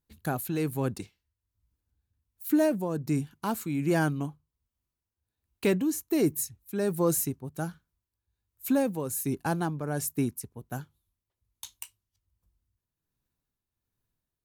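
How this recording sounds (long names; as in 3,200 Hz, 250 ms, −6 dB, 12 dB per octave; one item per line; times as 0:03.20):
tremolo triangle 1.3 Hz, depth 60%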